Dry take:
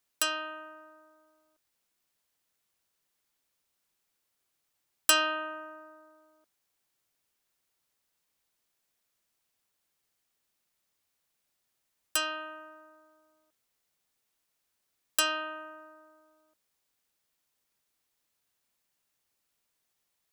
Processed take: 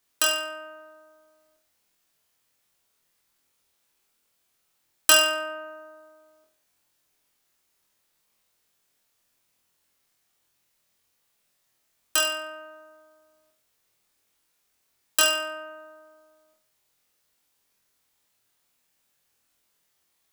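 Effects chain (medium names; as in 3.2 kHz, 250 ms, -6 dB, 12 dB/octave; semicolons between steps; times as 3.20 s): flutter echo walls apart 4.1 m, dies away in 0.44 s; trim +4.5 dB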